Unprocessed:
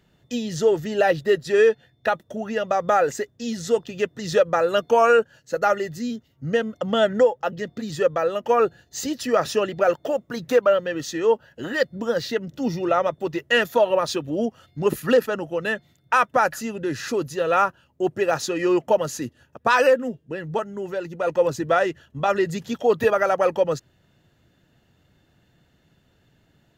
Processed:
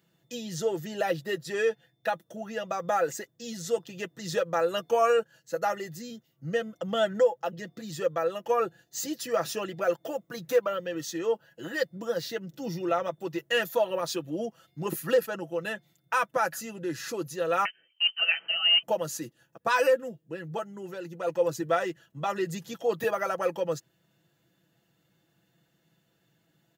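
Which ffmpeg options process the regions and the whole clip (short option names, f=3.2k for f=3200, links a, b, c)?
-filter_complex "[0:a]asettb=1/sr,asplit=3[a][b][c];[a]atrim=end=17.654[d];[b]atrim=start=17.65:end=18.83,asetpts=PTS-STARTPTS,afade=t=in:d=0.004:c=qsin,afade=t=out:st=1.176:d=0.004:c=qsin,lowshelf=f=230:g=4,acrusher=bits=4:mode=log:mix=0:aa=0.000001,lowpass=f=2.7k:t=q:w=0.5098,lowpass=f=2.7k:t=q:w=0.6013,lowpass=f=2.7k:t=q:w=0.9,lowpass=f=2.7k:t=q:w=2.563,afreqshift=-3200[e];[c]atrim=start=18.826[f];[d][e]acrossfade=d=0.004:c1=hsin:c2=qsin[g];[g][f]acrossfade=d=0.004:c1=qsin:c2=hsin,highpass=120,highshelf=f=8.3k:g=12,aecho=1:1:6:0.6,volume=-9dB"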